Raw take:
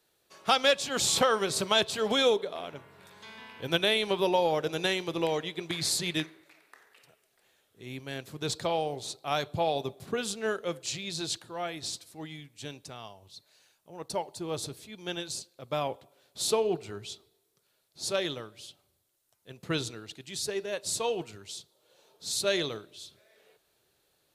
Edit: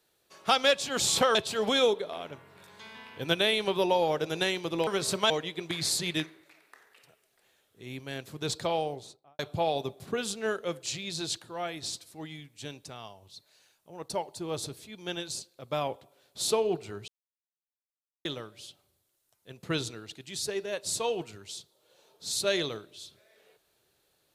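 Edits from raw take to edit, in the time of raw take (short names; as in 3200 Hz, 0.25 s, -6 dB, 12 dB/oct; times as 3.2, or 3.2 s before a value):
1.35–1.78 move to 5.3
8.78–9.39 studio fade out
17.08–18.25 mute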